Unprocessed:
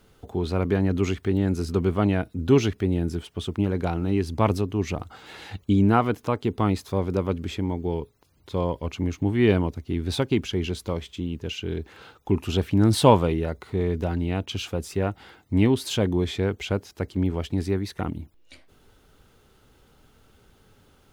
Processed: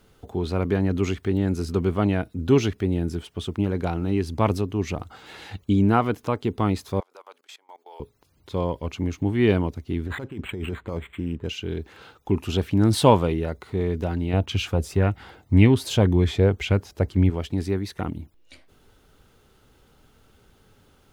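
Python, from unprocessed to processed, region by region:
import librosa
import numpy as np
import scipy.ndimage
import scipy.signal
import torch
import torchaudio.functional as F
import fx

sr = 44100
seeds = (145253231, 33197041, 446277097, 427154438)

y = fx.chain(x, sr, fx.highpass(hz=710.0, slope=24),
    fx.peak_eq(hz=2300.0, db=-5.5, octaves=1.4),
    fx.level_steps(step_db=22), at=(7.0, 8.0))
y = fx.chain(y, sr, fx.cheby1_lowpass(hz=4400.0, order=6),
    fx.over_compress(threshold_db=-29.0, ratio=-1.0),
    fx.resample_linear(factor=8), at=(10.06, 11.49))
y = fx.chain(y, sr, fx.peak_eq(hz=65.0, db=9.0, octaves=2.8),
    fx.bell_lfo(hz=1.9, low_hz=520.0, high_hz=2400.0, db=8), at=(14.33, 17.3))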